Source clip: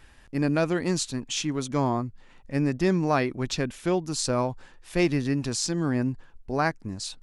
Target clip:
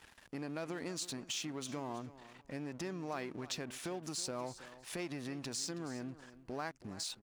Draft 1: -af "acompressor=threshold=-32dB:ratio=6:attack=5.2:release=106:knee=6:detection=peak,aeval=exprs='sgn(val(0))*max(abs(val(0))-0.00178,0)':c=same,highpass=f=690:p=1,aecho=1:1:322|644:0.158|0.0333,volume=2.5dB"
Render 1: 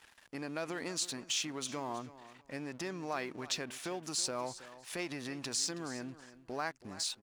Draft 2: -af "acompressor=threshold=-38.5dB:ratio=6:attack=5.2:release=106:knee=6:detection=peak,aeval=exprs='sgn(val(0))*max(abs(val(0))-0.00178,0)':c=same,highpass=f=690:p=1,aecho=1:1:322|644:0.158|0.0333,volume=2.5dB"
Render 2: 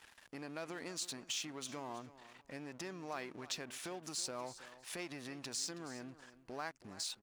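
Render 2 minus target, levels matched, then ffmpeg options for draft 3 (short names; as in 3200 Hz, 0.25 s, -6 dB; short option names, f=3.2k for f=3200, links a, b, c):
250 Hz band -4.0 dB
-af "acompressor=threshold=-38.5dB:ratio=6:attack=5.2:release=106:knee=6:detection=peak,aeval=exprs='sgn(val(0))*max(abs(val(0))-0.00178,0)':c=same,highpass=f=260:p=1,aecho=1:1:322|644:0.158|0.0333,volume=2.5dB"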